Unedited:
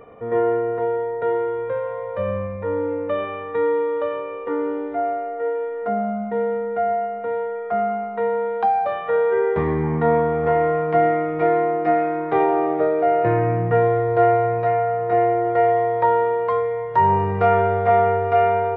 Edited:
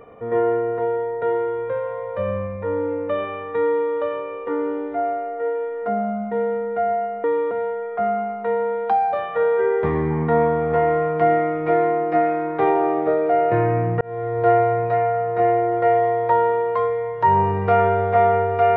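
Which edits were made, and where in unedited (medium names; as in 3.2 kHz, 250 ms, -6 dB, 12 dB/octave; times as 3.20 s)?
3.66–3.93 s: copy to 7.24 s
13.74–14.20 s: fade in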